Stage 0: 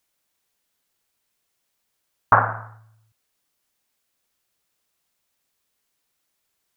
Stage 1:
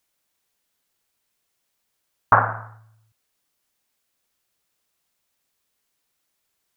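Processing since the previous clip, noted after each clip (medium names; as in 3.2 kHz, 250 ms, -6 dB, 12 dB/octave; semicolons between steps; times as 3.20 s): no audible change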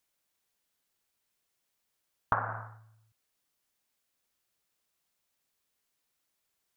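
compression 12:1, threshold -19 dBFS, peak gain reduction 11 dB; trim -5.5 dB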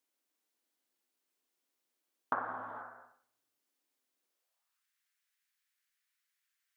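gated-style reverb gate 500 ms flat, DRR 5 dB; high-pass sweep 290 Hz -> 1.7 kHz, 4.23–4.86 s; trim -6 dB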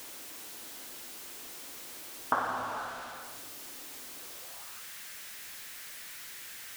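jump at every zero crossing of -43 dBFS; trim +4.5 dB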